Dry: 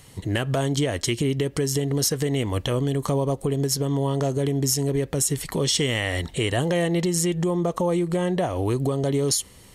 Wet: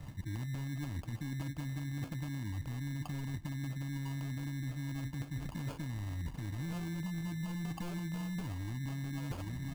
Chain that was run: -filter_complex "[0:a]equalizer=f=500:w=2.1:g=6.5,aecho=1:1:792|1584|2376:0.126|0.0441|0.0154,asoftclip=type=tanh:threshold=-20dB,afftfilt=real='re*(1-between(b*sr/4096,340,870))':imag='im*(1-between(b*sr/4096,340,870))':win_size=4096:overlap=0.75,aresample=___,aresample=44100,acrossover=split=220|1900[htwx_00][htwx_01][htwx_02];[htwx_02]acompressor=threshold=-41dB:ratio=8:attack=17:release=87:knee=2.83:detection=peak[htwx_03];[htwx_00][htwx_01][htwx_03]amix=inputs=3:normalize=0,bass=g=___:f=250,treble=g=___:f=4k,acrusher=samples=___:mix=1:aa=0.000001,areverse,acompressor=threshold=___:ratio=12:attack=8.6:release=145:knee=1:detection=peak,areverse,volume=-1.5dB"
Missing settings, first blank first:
11025, 8, -10, 23, -35dB